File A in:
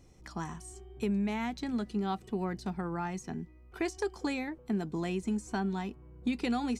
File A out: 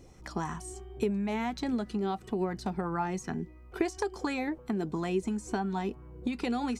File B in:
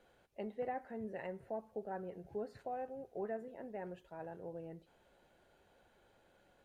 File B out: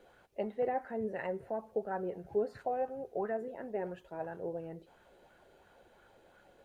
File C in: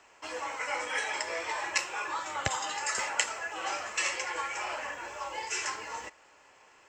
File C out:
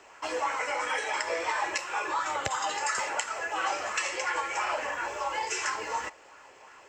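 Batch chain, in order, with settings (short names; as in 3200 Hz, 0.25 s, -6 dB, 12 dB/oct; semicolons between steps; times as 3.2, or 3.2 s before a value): compressor 6:1, threshold -33 dBFS; LFO bell 2.9 Hz 370–1500 Hz +8 dB; gain +4 dB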